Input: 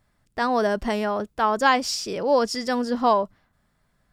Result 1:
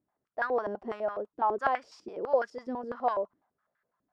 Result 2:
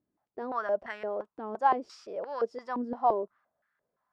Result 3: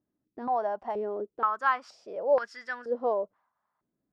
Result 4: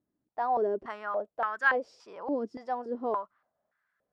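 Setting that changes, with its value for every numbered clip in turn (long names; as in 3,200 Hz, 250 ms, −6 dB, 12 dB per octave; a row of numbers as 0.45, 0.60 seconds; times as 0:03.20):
band-pass on a step sequencer, speed: 12, 5.8, 2.1, 3.5 Hertz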